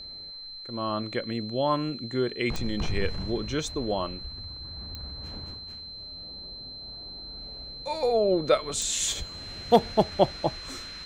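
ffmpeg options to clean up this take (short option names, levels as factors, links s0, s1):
-af "adeclick=t=4,bandreject=f=4100:w=30"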